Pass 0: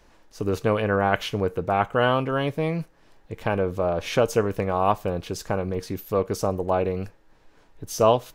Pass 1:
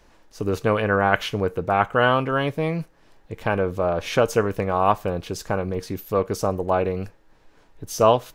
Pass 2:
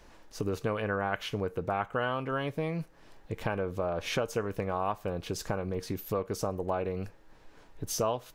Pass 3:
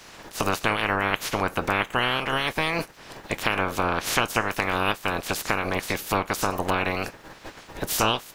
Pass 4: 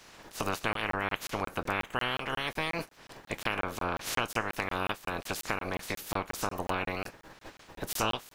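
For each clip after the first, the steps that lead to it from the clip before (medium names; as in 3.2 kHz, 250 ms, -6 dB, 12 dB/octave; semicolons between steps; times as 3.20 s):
dynamic bell 1.5 kHz, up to +4 dB, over -33 dBFS, Q 1.2; trim +1 dB
compression 3:1, threshold -31 dBFS, peak gain reduction 15 dB
spectral peaks clipped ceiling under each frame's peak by 27 dB; trim +7.5 dB
crackling interface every 0.18 s, samples 1024, zero, from 0.73 s; trim -7.5 dB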